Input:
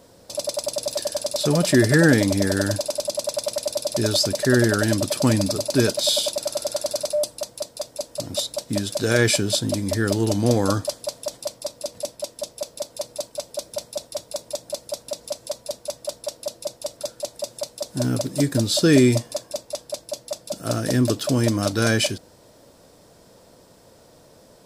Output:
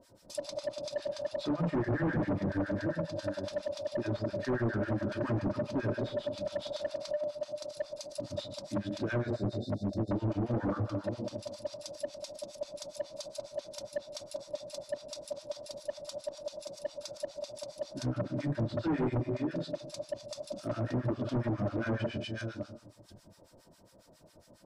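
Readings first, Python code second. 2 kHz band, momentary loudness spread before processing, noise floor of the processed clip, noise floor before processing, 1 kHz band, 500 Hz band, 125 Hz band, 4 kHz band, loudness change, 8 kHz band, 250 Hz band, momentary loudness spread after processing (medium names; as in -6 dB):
-15.5 dB, 14 LU, -61 dBFS, -52 dBFS, -9.5 dB, -11.5 dB, -11.0 dB, -19.5 dB, -12.5 dB, -23.5 dB, -12.0 dB, 10 LU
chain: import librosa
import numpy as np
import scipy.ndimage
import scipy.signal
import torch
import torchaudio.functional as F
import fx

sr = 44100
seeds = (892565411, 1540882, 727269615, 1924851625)

y = fx.reverse_delay(x, sr, ms=492, wet_db=-10)
y = fx.spec_erase(y, sr, start_s=9.19, length_s=0.93, low_hz=800.0, high_hz=3500.0)
y = fx.room_shoebox(y, sr, seeds[0], volume_m3=2000.0, walls='furnished', distance_m=2.7)
y = fx.harmonic_tremolo(y, sr, hz=7.3, depth_pct=100, crossover_hz=990.0)
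y = np.clip(10.0 ** (19.0 / 20.0) * y, -1.0, 1.0) / 10.0 ** (19.0 / 20.0)
y = fx.env_lowpass_down(y, sr, base_hz=1300.0, full_db=-20.0)
y = F.gain(torch.from_numpy(y), -8.0).numpy()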